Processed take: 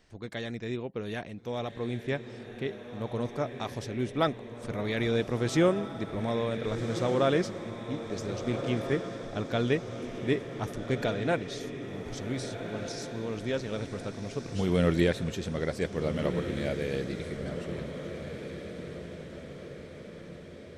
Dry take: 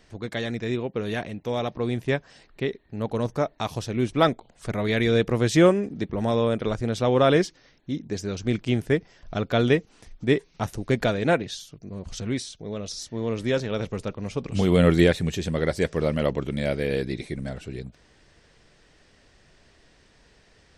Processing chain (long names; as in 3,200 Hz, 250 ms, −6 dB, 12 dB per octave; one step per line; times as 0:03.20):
feedback delay with all-pass diffusion 1,562 ms, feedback 54%, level −8 dB
level −7 dB